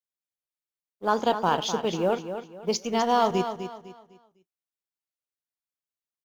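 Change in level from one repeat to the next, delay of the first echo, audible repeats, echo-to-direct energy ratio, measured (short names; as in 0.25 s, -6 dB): -10.0 dB, 0.252 s, 3, -9.0 dB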